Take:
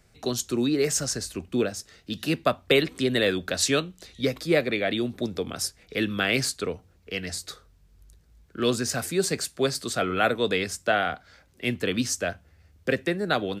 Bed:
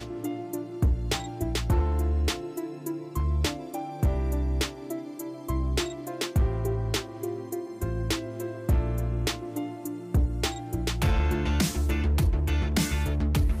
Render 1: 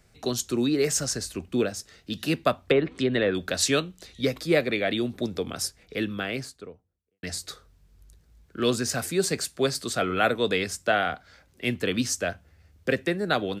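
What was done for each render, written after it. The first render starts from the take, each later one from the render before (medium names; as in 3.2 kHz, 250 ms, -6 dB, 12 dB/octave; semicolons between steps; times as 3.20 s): 2.64–3.35 s: low-pass that closes with the level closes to 1.4 kHz, closed at -17 dBFS; 5.54–7.23 s: studio fade out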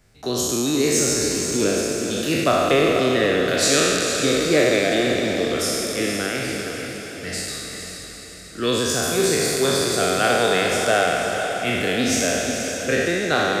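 spectral sustain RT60 2.27 s; echo that smears into a reverb 463 ms, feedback 54%, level -7 dB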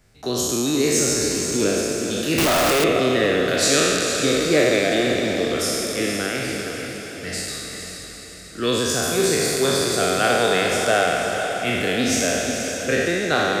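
2.38–2.84 s: one-bit comparator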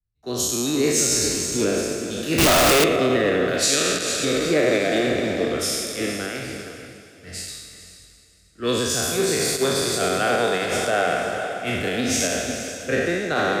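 peak limiter -11 dBFS, peak gain reduction 6 dB; three bands expanded up and down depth 100%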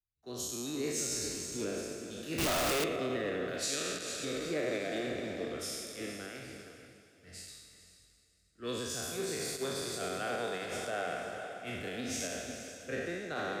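trim -15 dB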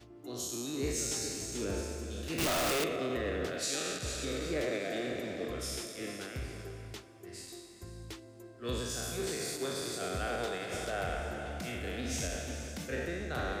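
add bed -17.5 dB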